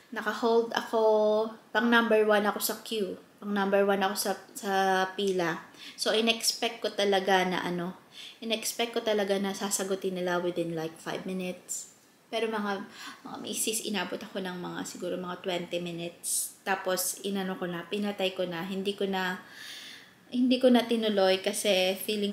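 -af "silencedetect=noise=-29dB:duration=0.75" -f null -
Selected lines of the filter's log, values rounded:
silence_start: 19.35
silence_end: 20.34 | silence_duration: 0.99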